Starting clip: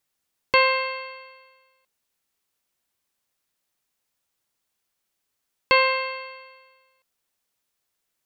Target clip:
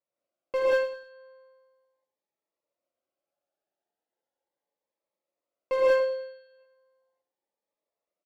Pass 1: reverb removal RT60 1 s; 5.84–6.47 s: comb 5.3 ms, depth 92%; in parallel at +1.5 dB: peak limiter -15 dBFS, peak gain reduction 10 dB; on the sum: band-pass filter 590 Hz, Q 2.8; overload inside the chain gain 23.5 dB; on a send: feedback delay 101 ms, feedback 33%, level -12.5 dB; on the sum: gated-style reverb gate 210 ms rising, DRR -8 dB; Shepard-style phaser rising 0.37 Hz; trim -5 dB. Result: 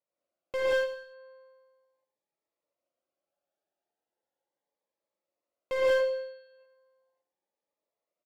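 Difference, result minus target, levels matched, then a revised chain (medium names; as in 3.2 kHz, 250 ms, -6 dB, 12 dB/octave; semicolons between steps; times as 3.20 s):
overload inside the chain: distortion +11 dB
reverb removal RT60 1 s; 5.84–6.47 s: comb 5.3 ms, depth 92%; in parallel at +1.5 dB: peak limiter -15 dBFS, peak gain reduction 10 dB; on the sum: band-pass filter 590 Hz, Q 2.8; overload inside the chain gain 17 dB; on a send: feedback delay 101 ms, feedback 33%, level -12.5 dB; on the sum: gated-style reverb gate 210 ms rising, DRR -8 dB; Shepard-style phaser rising 0.37 Hz; trim -5 dB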